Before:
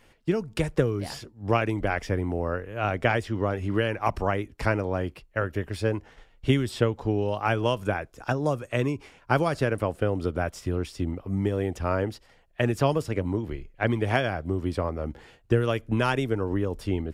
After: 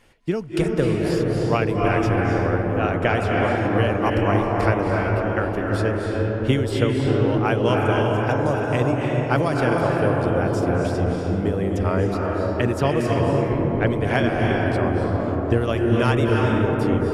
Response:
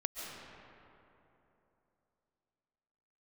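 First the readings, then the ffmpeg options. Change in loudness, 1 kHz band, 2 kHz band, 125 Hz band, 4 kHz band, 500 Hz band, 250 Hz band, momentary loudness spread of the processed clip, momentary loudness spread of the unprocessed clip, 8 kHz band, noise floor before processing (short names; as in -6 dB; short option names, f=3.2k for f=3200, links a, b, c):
+6.5 dB, +6.5 dB, +5.0 dB, +7.0 dB, +4.0 dB, +6.5 dB, +7.5 dB, 4 LU, 7 LU, +3.5 dB, -59 dBFS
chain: -filter_complex "[1:a]atrim=start_sample=2205,asetrate=23814,aresample=44100[a];[0:a][a]afir=irnorm=-1:irlink=0"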